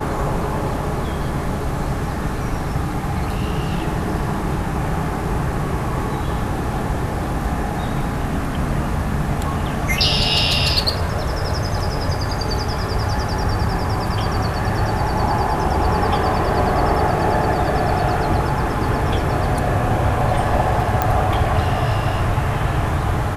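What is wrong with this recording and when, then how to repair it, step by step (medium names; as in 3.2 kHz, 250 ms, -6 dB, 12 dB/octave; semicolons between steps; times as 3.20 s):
21.02 s: pop -4 dBFS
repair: de-click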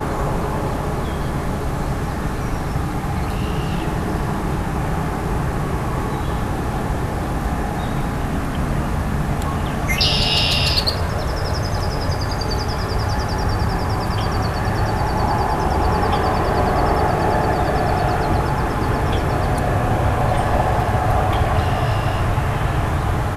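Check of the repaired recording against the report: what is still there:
nothing left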